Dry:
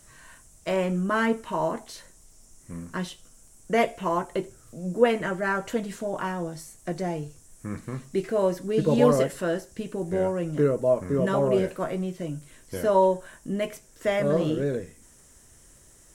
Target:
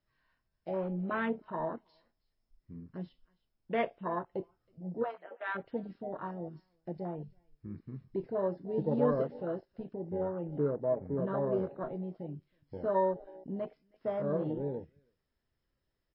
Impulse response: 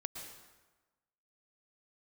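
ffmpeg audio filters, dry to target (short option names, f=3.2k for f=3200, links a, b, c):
-filter_complex "[0:a]asplit=3[a][b][c];[a]afade=t=out:st=5.02:d=0.02[d];[b]highpass=f=630:w=0.5412,highpass=f=630:w=1.3066,afade=t=in:st=5.02:d=0.02,afade=t=out:st=5.54:d=0.02[e];[c]afade=t=in:st=5.54:d=0.02[f];[d][e][f]amix=inputs=3:normalize=0,aecho=1:1:321:0.106,afwtdn=0.0398,volume=-8.5dB" -ar 12000 -c:a libmp3lame -b:a 24k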